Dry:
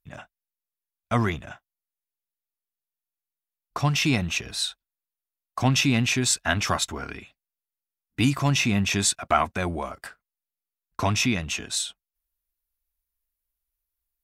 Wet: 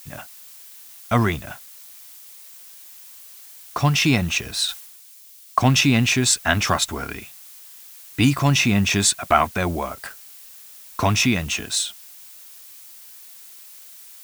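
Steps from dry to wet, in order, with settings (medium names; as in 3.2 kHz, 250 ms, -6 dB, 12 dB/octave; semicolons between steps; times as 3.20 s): added noise blue -48 dBFS; 4.68–5.59 s: three bands expanded up and down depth 100%; trim +4.5 dB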